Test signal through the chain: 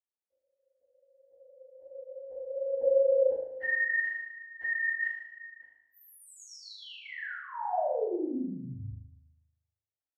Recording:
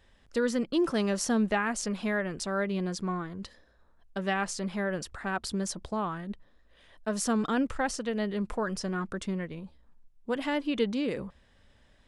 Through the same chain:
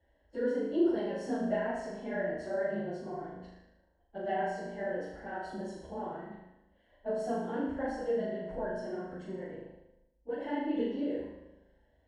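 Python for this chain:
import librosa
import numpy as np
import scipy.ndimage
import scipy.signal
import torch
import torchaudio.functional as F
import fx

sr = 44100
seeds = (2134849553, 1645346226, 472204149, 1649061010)

p1 = fx.phase_scramble(x, sr, seeds[0], window_ms=50)
p2 = scipy.signal.lfilter(np.full(36, 1.0 / 36), 1.0, p1)
p3 = fx.low_shelf(p2, sr, hz=230.0, db=-7.0)
p4 = fx.rev_freeverb(p3, sr, rt60_s=0.83, hf_ratio=0.65, predelay_ms=10, drr_db=9.0)
p5 = fx.chorus_voices(p4, sr, voices=4, hz=1.4, base_ms=14, depth_ms=3.2, mix_pct=30)
p6 = scipy.signal.sosfilt(scipy.signal.butter(2, 42.0, 'highpass', fs=sr, output='sos'), p5)
p7 = fx.peak_eq(p6, sr, hz=160.0, db=-14.5, octaves=1.3)
p8 = fx.notch(p7, sr, hz=410.0, q=12.0)
p9 = p8 + fx.room_flutter(p8, sr, wall_m=6.6, rt60_s=0.81, dry=0)
y = p9 * librosa.db_to_amplitude(4.5)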